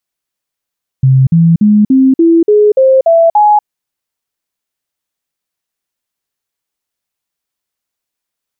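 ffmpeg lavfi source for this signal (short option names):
-f lavfi -i "aevalsrc='0.668*clip(min(mod(t,0.29),0.24-mod(t,0.29))/0.005,0,1)*sin(2*PI*132*pow(2,floor(t/0.29)/3)*mod(t,0.29))':d=2.61:s=44100"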